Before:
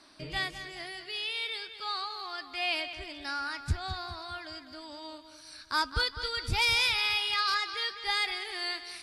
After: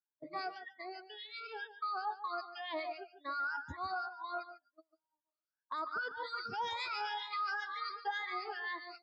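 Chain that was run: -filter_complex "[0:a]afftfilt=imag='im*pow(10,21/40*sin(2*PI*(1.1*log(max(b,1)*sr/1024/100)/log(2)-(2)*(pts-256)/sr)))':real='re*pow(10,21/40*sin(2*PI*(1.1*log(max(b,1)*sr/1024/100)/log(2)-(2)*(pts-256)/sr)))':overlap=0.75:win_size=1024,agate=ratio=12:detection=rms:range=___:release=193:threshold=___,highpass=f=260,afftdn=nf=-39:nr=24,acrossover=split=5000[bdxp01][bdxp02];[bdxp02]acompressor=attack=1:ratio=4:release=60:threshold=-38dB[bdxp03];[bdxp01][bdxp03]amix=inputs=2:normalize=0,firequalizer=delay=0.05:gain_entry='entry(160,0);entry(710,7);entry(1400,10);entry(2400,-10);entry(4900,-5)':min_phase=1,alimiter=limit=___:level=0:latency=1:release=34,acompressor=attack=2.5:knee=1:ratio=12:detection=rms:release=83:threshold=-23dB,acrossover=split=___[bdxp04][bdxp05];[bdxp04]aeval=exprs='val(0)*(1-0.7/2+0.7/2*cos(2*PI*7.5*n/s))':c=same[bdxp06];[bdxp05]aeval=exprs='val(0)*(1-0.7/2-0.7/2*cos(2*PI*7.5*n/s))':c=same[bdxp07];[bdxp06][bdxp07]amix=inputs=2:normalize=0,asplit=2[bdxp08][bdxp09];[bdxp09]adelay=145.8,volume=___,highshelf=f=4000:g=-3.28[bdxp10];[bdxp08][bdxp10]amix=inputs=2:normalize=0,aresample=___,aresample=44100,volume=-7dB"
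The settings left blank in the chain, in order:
-21dB, -34dB, -10.5dB, 1500, -12dB, 16000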